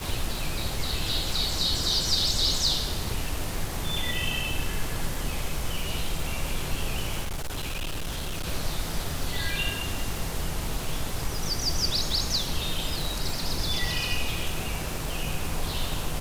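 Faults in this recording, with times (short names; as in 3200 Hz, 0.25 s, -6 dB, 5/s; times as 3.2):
crackle 320/s -31 dBFS
7.22–8.47 clipped -27.5 dBFS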